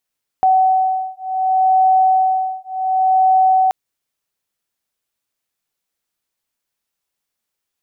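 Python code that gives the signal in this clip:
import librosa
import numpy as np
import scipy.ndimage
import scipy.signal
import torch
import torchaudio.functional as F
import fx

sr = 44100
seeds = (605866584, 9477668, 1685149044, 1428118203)

y = fx.two_tone_beats(sr, length_s=3.28, hz=754.0, beat_hz=0.68, level_db=-15.0)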